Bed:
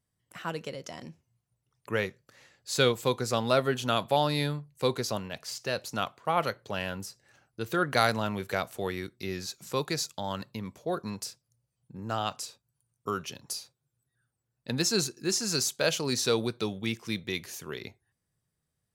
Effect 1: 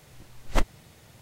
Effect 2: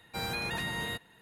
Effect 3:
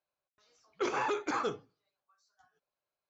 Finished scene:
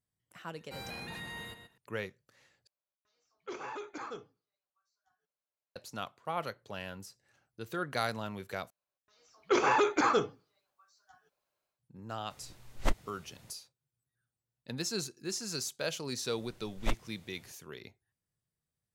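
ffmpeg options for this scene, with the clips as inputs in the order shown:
ffmpeg -i bed.wav -i cue0.wav -i cue1.wav -i cue2.wav -filter_complex "[3:a]asplit=2[link_01][link_02];[1:a]asplit=2[link_03][link_04];[0:a]volume=-8.5dB[link_05];[2:a]asplit=2[link_06][link_07];[link_07]adelay=128.3,volume=-8dB,highshelf=frequency=4000:gain=-2.89[link_08];[link_06][link_08]amix=inputs=2:normalize=0[link_09];[link_02]dynaudnorm=framelen=330:gausssize=3:maxgain=10.5dB[link_10];[link_05]asplit=3[link_11][link_12][link_13];[link_11]atrim=end=2.674[link_14];[link_01]atrim=end=3.09,asetpts=PTS-STARTPTS,volume=-9.5dB[link_15];[link_12]atrim=start=5.756:end=8.704[link_16];[link_10]atrim=end=3.09,asetpts=PTS-STARTPTS,volume=-4.5dB[link_17];[link_13]atrim=start=11.786[link_18];[link_09]atrim=end=1.21,asetpts=PTS-STARTPTS,volume=-9.5dB,afade=type=in:duration=0.004:curve=hsin,afade=type=out:start_time=1.206:duration=0.004:curve=hsin,adelay=570[link_19];[link_03]atrim=end=1.21,asetpts=PTS-STARTPTS,volume=-6dB,afade=type=in:duration=0.004:curve=hsin,afade=type=out:start_time=1.206:duration=0.004:curve=hsin,adelay=12300[link_20];[link_04]atrim=end=1.21,asetpts=PTS-STARTPTS,volume=-8.5dB,afade=type=in:duration=0.004:curve=hsin,afade=type=out:start_time=1.206:duration=0.004:curve=hsin,adelay=16310[link_21];[link_14][link_15]acrossfade=duration=0.004:curve1=hsin:curve2=hsin[link_22];[link_22][link_16]acrossfade=duration=0.004:curve1=hsin:curve2=hsin[link_23];[link_23][link_17]acrossfade=duration=0.004:curve1=hsin:curve2=hsin[link_24];[link_24][link_18]acrossfade=duration=0.004:curve1=hsin:curve2=hsin[link_25];[link_25][link_19][link_20][link_21]amix=inputs=4:normalize=0" out.wav

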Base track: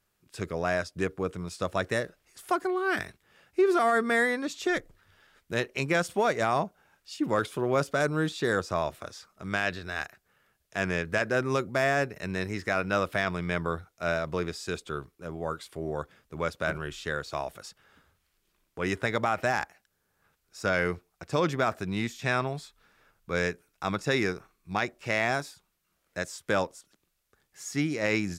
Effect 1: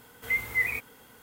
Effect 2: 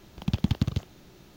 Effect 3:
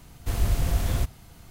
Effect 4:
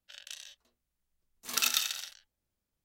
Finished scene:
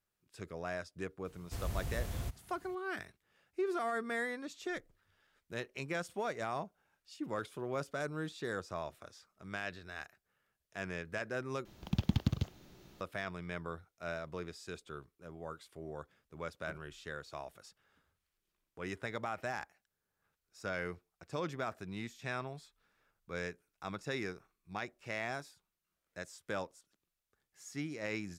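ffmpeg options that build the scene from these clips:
ffmpeg -i bed.wav -i cue0.wav -i cue1.wav -i cue2.wav -filter_complex "[0:a]volume=-12dB[link_01];[3:a]highpass=42[link_02];[link_01]asplit=2[link_03][link_04];[link_03]atrim=end=11.654[link_05];[2:a]atrim=end=1.36,asetpts=PTS-STARTPTS,volume=-6dB[link_06];[link_04]atrim=start=13.006[link_07];[link_02]atrim=end=1.5,asetpts=PTS-STARTPTS,volume=-12.5dB,afade=type=in:duration=0.004:curve=hsin,afade=type=out:start_time=1.496:duration=0.004:curve=hsin,adelay=1250[link_08];[link_05][link_06]acrossfade=duration=0.004:curve1=hsin:curve2=hsin[link_09];[link_09][link_07]acrossfade=duration=0.004:curve1=hsin:curve2=hsin[link_10];[link_10][link_08]amix=inputs=2:normalize=0" out.wav

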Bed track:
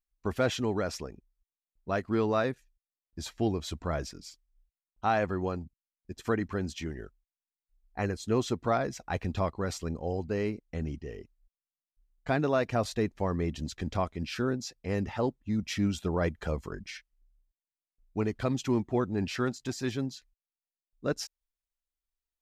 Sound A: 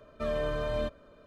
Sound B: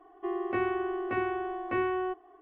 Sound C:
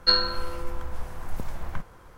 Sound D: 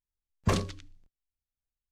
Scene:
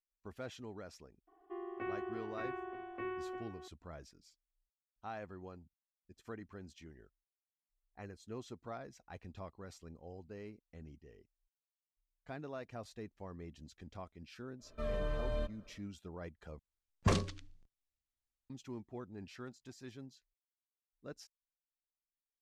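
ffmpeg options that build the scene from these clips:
ffmpeg -i bed.wav -i cue0.wav -i cue1.wav -i cue2.wav -i cue3.wav -filter_complex "[0:a]volume=-18dB[link_01];[2:a]aecho=1:1:350:0.316[link_02];[1:a]lowshelf=frequency=65:gain=12[link_03];[4:a]lowpass=9600[link_04];[link_01]asplit=2[link_05][link_06];[link_05]atrim=end=16.594[link_07];[link_04]atrim=end=1.91,asetpts=PTS-STARTPTS,volume=-3.5dB[link_08];[link_06]atrim=start=18.496[link_09];[link_02]atrim=end=2.41,asetpts=PTS-STARTPTS,volume=-12dB,afade=type=in:duration=0.004:curve=hsin,afade=type=out:start_time=2.406:duration=0.004:curve=hsin,adelay=1270[link_10];[link_03]atrim=end=1.26,asetpts=PTS-STARTPTS,volume=-8.5dB,afade=type=in:duration=0.1,afade=type=out:start_time=1.16:duration=0.1,adelay=14580[link_11];[link_07][link_08]acrossfade=duration=0.004:curve1=hsin:curve2=hsin[link_12];[link_12][link_09]acrossfade=duration=0.004:curve1=hsin:curve2=hsin[link_13];[link_13][link_10][link_11]amix=inputs=3:normalize=0" out.wav

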